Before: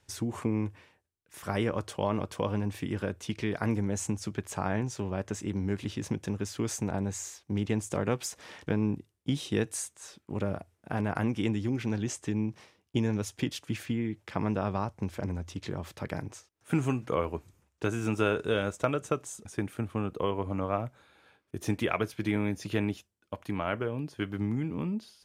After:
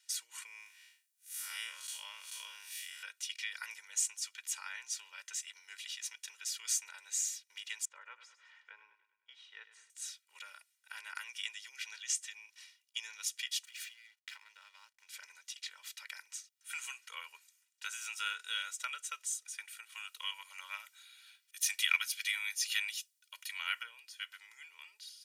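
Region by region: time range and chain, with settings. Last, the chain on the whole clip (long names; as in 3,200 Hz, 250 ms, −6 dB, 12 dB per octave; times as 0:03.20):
0:00.46–0:03.03: spectrum smeared in time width 125 ms + high-shelf EQ 5,600 Hz +10 dB
0:07.85–0:09.90: low-pass filter 1,200 Hz + repeating echo 102 ms, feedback 52%, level −13 dB
0:13.65–0:15.09: downward compressor 2.5 to 1, threshold −39 dBFS + slack as between gear wheels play −52 dBFS
0:19.92–0:23.83: high-pass filter 540 Hz 24 dB per octave + high-shelf EQ 2,200 Hz +8.5 dB
whole clip: Bessel high-pass filter 2,800 Hz, order 4; comb filter 2.1 ms, depth 94%; level +2.5 dB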